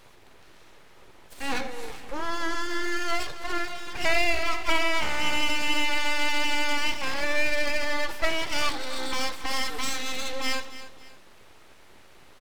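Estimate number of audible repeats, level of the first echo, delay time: 2, −14.5 dB, 280 ms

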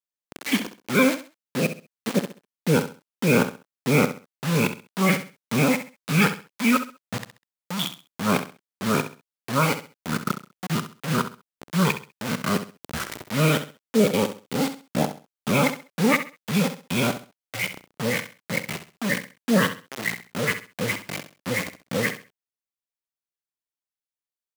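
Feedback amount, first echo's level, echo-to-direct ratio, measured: 27%, −11.0 dB, −10.5 dB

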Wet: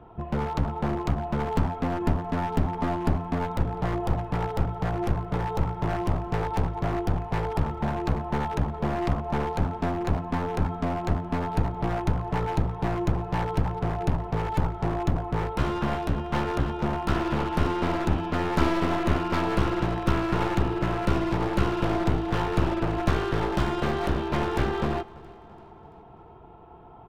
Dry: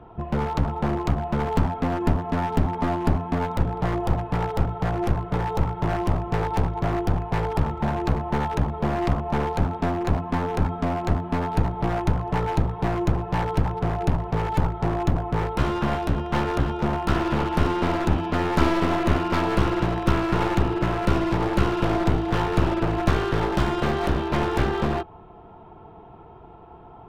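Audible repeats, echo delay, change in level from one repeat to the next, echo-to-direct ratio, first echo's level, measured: 3, 337 ms, −5.0 dB, −21.0 dB, −22.5 dB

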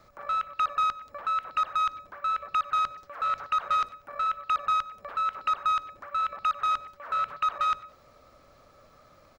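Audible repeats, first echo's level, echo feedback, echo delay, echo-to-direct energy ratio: 2, −20.5 dB, 30%, 95 ms, −20.0 dB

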